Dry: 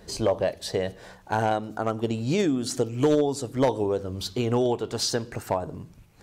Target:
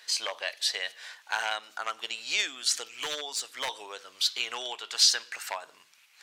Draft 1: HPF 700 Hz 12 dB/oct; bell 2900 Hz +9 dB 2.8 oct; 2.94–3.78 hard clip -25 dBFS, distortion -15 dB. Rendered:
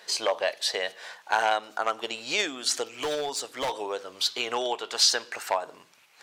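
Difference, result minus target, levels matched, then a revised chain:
500 Hz band +11.0 dB
HPF 1600 Hz 12 dB/oct; bell 2900 Hz +9 dB 2.8 oct; 2.94–3.78 hard clip -25 dBFS, distortion -23 dB

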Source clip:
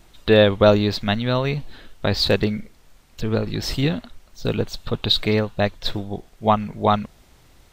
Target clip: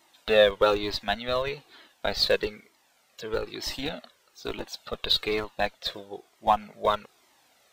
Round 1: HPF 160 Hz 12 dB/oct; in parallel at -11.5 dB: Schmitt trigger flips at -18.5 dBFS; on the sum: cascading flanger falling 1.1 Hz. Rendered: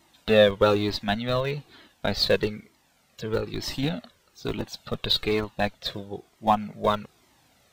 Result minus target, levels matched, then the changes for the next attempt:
125 Hz band +10.0 dB
change: HPF 410 Hz 12 dB/oct

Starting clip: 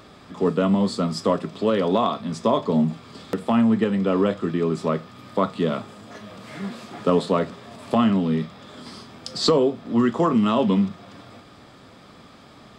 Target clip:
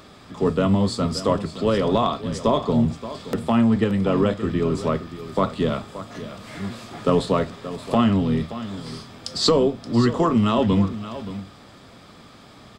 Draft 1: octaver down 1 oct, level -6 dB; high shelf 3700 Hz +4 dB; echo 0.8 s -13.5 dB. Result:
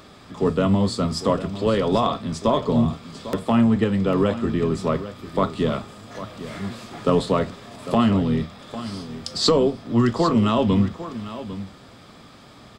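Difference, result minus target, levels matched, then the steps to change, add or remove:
echo 0.224 s late
change: echo 0.576 s -13.5 dB

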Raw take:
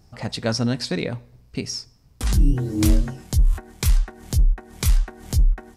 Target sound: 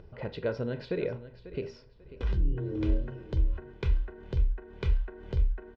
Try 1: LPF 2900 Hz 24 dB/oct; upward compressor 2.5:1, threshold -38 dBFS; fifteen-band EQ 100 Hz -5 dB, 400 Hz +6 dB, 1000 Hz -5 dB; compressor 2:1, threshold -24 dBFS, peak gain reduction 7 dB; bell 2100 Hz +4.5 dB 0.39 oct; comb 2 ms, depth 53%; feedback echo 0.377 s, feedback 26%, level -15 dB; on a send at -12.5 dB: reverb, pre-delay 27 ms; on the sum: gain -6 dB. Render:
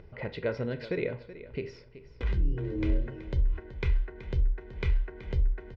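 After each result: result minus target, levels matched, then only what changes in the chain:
echo 0.166 s early; 2000 Hz band +4.0 dB
change: feedback echo 0.543 s, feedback 26%, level -15 dB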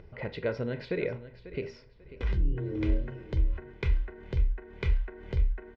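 2000 Hz band +4.0 dB
change: bell 2100 Hz -5 dB 0.39 oct

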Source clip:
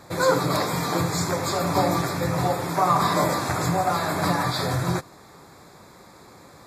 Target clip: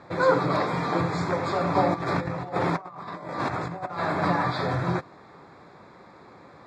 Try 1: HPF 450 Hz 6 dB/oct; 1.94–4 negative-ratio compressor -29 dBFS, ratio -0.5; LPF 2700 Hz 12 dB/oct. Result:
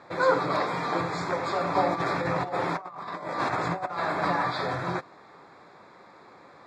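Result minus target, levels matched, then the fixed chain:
125 Hz band -5.0 dB
HPF 120 Hz 6 dB/oct; 1.94–4 negative-ratio compressor -29 dBFS, ratio -0.5; LPF 2700 Hz 12 dB/oct

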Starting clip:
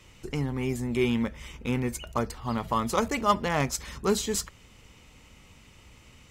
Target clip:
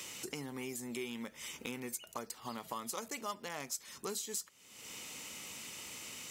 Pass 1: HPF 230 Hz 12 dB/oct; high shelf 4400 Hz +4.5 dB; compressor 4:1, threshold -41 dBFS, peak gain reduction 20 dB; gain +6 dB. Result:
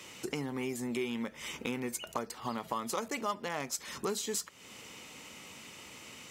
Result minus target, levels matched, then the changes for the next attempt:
compressor: peak gain reduction -8 dB; 8000 Hz band -3.5 dB
change: high shelf 4400 Hz +16 dB; change: compressor 4:1, threshold -49.5 dBFS, peak gain reduction 28 dB

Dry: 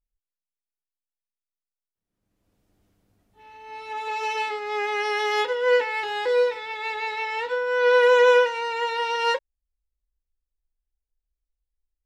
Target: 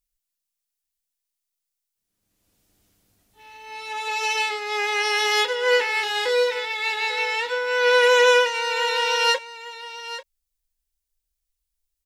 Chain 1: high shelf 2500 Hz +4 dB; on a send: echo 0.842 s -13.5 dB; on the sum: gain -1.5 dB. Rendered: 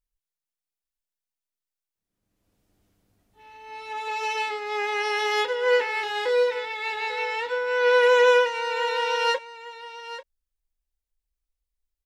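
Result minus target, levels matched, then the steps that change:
4000 Hz band -4.5 dB
change: high shelf 2500 Hz +15.5 dB

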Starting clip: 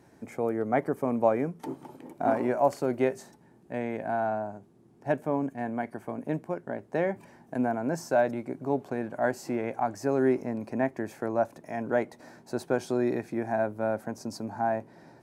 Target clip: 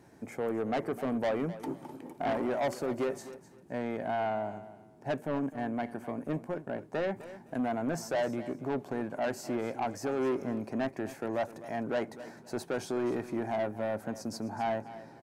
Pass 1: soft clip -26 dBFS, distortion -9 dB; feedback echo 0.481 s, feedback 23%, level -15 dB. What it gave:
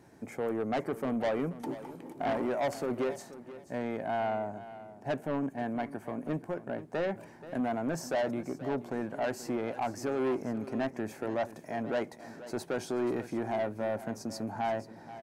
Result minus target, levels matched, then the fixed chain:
echo 0.225 s late
soft clip -26 dBFS, distortion -9 dB; feedback echo 0.256 s, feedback 23%, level -15 dB

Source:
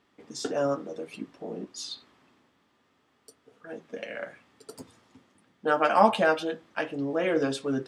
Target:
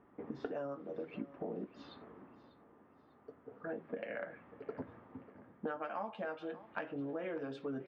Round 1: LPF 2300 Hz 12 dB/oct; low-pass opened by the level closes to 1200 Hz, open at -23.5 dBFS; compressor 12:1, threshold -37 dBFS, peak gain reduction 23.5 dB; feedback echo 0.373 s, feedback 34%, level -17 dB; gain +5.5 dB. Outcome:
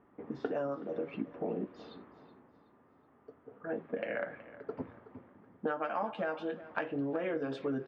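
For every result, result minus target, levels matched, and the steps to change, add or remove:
echo 0.222 s early; compressor: peak gain reduction -6 dB
change: feedback echo 0.595 s, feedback 34%, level -17 dB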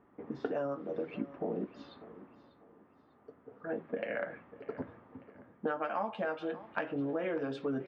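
compressor: peak gain reduction -6 dB
change: compressor 12:1, threshold -43.5 dBFS, peak gain reduction 29.5 dB

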